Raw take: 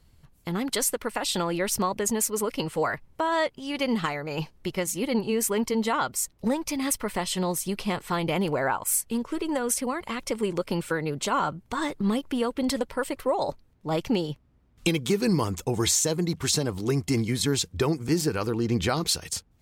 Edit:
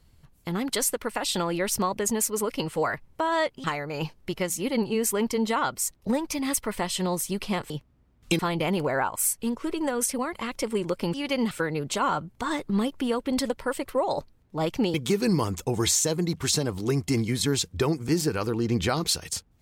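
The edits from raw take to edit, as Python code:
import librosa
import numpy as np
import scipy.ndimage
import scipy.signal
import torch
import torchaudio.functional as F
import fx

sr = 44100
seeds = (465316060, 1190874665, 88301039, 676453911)

y = fx.edit(x, sr, fx.move(start_s=3.64, length_s=0.37, to_s=10.82),
    fx.move(start_s=14.25, length_s=0.69, to_s=8.07), tone=tone)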